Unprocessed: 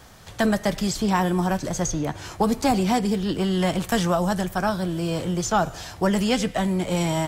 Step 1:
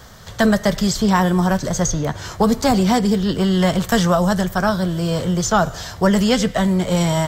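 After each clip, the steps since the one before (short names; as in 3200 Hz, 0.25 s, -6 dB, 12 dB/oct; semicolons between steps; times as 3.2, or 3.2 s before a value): thirty-one-band EQ 315 Hz -9 dB, 800 Hz -5 dB, 2500 Hz -8 dB, 10000 Hz -10 dB; gain +7 dB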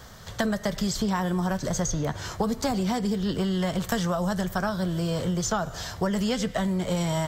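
compressor, threshold -19 dBFS, peak gain reduction 9 dB; gain -4 dB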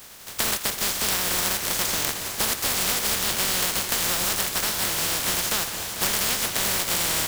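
spectral contrast lowered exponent 0.13; split-band echo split 860 Hz, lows 0.25 s, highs 85 ms, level -13.5 dB; warbling echo 0.453 s, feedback 76%, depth 175 cents, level -12 dB; gain +1.5 dB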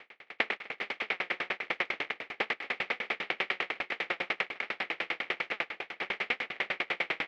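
speaker cabinet 450–2500 Hz, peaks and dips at 630 Hz -5 dB, 1000 Hz -10 dB, 1500 Hz -6 dB, 2200 Hz +7 dB; dB-ramp tremolo decaying 10 Hz, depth 38 dB; gain +7 dB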